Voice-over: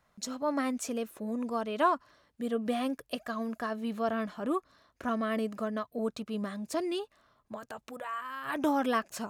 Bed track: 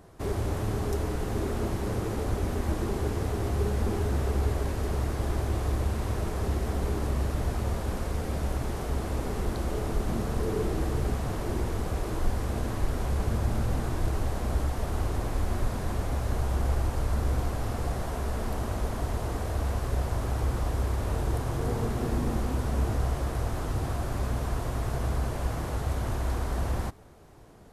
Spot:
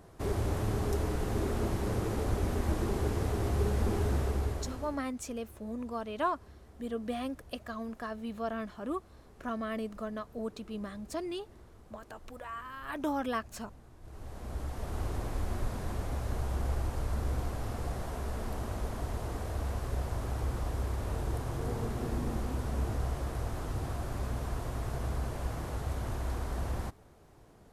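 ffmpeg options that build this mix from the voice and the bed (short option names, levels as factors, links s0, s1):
-filter_complex "[0:a]adelay=4400,volume=0.596[s0];[1:a]volume=7.94,afade=t=out:st=4.11:d=0.93:silence=0.0668344,afade=t=in:st=14.01:d=1.06:silence=0.1[s1];[s0][s1]amix=inputs=2:normalize=0"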